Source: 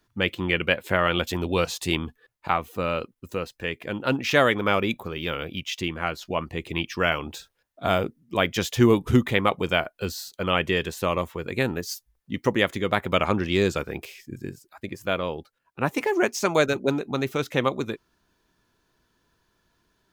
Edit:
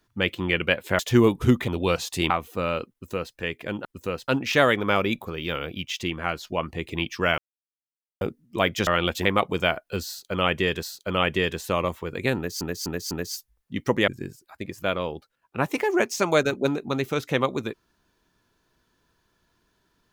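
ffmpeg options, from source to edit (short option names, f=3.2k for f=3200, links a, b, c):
-filter_complex "[0:a]asplit=15[a][b][c][d][e][f][g][h][i][j][k][l][m][n][o];[a]atrim=end=0.992[p];[b]atrim=start=8.648:end=9.342[q];[c]atrim=start=1.368:end=1.992[r];[d]atrim=start=2.508:end=4.062[s];[e]atrim=start=3.128:end=3.562[t];[f]atrim=start=4.058:end=7.16,asetpts=PTS-STARTPTS,afade=t=out:st=3.098:d=0.004:c=hsin[u];[g]atrim=start=7.16:end=7.99,asetpts=PTS-STARTPTS,volume=0[v];[h]atrim=start=7.99:end=8.652,asetpts=PTS-STARTPTS,afade=t=in:d=0.004:c=hsin[w];[i]atrim=start=0.988:end=1.372[x];[j]atrim=start=9.338:end=10.922[y];[k]atrim=start=10.158:end=11.942[z];[l]atrim=start=11.688:end=11.942[aa];[m]atrim=start=11.688:end=11.942[ab];[n]atrim=start=11.688:end=12.662[ac];[o]atrim=start=14.308[ad];[p][q]acrossfade=d=0.004:c1=hsin:c2=hsin[ae];[ae][r]acrossfade=d=0.004:c1=hsin:c2=hsin[af];[af][s]acrossfade=d=0.004:c1=hsin:c2=hsin[ag];[ag][t]acrossfade=d=0.004:c1=hsin:c2=hsin[ah];[u][v][w]concat=n=3:v=0:a=1[ai];[ah][ai]acrossfade=d=0.004:c1=hsin:c2=hsin[aj];[aj][x]acrossfade=d=0.004:c1=hsin:c2=hsin[ak];[ak][y]acrossfade=d=0.004:c1=hsin:c2=hsin[al];[al][z]acrossfade=d=0.004:c1=hsin:c2=hsin[am];[am][aa]acrossfade=d=0.004:c1=hsin:c2=hsin[an];[an][ab]acrossfade=d=0.004:c1=hsin:c2=hsin[ao];[ao][ac]acrossfade=d=0.004:c1=hsin:c2=hsin[ap];[ap][ad]acrossfade=d=0.004:c1=hsin:c2=hsin"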